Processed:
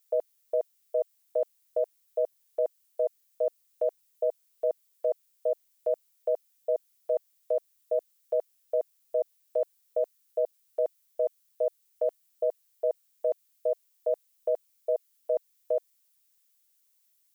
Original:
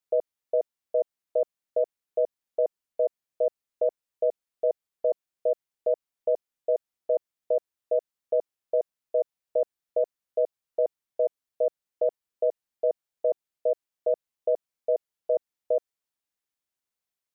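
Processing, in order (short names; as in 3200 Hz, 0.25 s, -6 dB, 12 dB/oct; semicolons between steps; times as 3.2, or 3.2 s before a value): tilt +5 dB/oct; gain +1.5 dB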